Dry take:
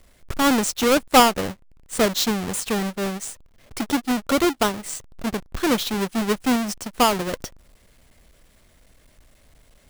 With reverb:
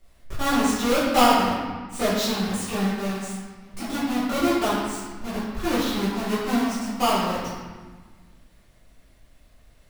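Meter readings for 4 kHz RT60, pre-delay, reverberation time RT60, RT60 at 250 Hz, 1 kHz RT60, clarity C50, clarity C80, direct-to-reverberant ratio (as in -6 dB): 1.1 s, 5 ms, 1.4 s, 1.9 s, 1.5 s, -1.0 dB, 1.5 dB, -11.5 dB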